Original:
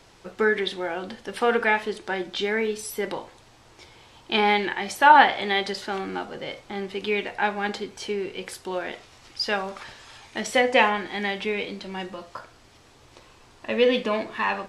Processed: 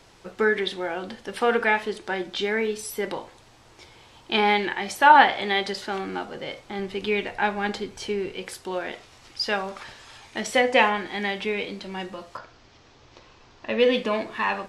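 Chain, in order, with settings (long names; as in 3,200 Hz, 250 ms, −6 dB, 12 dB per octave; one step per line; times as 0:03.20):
0:06.79–0:08.33: low-shelf EQ 110 Hz +9.5 dB
0:12.37–0:13.80: Butterworth low-pass 6,400 Hz 36 dB per octave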